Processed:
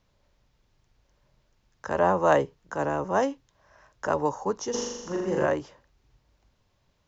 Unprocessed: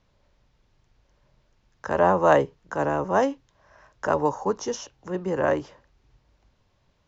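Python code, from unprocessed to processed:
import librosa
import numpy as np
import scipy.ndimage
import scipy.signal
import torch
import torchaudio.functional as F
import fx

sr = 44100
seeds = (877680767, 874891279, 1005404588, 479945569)

y = fx.high_shelf(x, sr, hz=6600.0, db=7.0)
y = fx.room_flutter(y, sr, wall_m=7.1, rt60_s=1.1, at=(4.73, 5.45), fade=0.02)
y = y * librosa.db_to_amplitude(-3.0)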